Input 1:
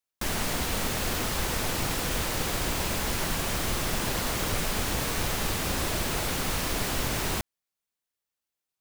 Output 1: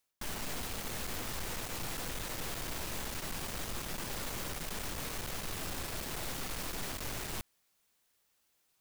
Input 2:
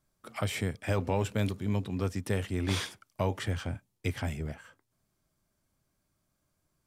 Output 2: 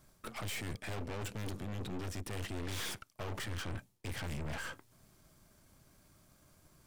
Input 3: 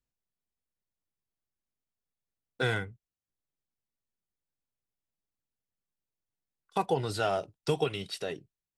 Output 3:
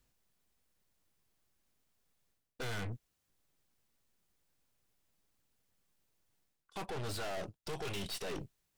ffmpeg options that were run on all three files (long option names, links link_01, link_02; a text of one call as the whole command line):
ffmpeg -i in.wav -af "areverse,acompressor=threshold=-44dB:ratio=4,areverse,aeval=exprs='(tanh(631*val(0)+0.75)-tanh(0.75))/631':channel_layout=same,volume=17.5dB" out.wav